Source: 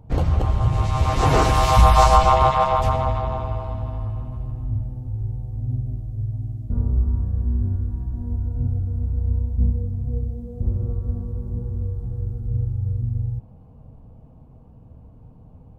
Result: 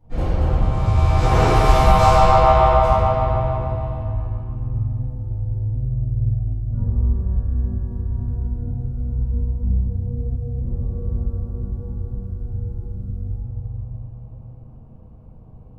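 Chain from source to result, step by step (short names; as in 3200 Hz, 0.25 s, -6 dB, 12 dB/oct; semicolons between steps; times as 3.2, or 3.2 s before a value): 3.98–4.91 high shelf 7800 Hz -10.5 dB; reverb RT60 2.1 s, pre-delay 4 ms, DRR -16.5 dB; gain -15 dB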